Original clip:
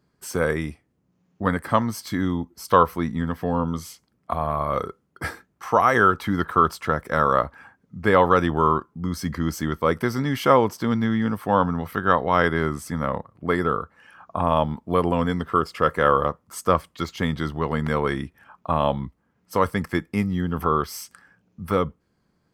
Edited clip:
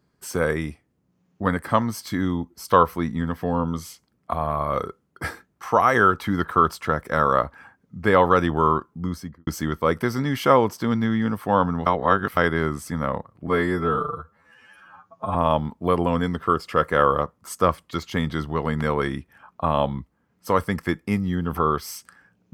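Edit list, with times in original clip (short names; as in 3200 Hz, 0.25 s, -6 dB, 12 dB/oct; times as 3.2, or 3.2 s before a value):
9.01–9.47 studio fade out
11.86–12.37 reverse
13.47–14.41 stretch 2×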